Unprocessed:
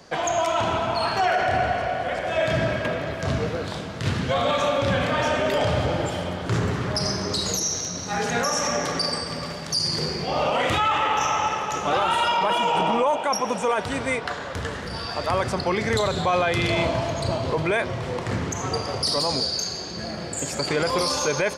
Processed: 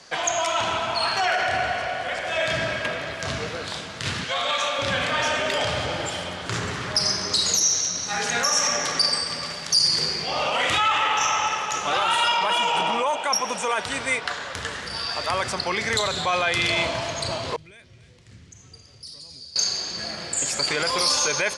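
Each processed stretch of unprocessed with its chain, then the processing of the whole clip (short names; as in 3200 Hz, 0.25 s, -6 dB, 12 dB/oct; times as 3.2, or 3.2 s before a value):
4.24–4.79 LPF 11000 Hz + low shelf 360 Hz -11.5 dB
17.56–19.56 passive tone stack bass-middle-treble 10-0-1 + echo 0.27 s -13 dB
whole clip: steep low-pass 11000 Hz 36 dB/oct; tilt shelf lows -7 dB; gain -1 dB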